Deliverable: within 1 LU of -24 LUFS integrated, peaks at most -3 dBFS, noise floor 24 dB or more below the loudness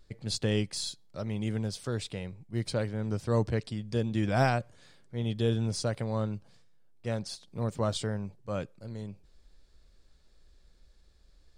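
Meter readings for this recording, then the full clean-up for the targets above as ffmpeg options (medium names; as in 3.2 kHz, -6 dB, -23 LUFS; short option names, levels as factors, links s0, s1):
loudness -32.5 LUFS; peak level -14.0 dBFS; loudness target -24.0 LUFS
-> -af "volume=2.66"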